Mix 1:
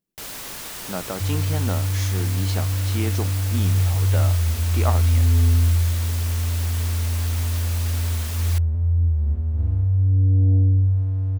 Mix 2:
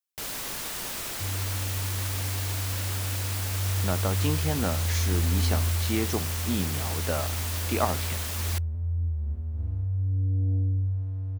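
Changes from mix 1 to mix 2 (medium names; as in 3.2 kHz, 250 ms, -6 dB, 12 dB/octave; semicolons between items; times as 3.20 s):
speech: entry +2.95 s; second sound -9.0 dB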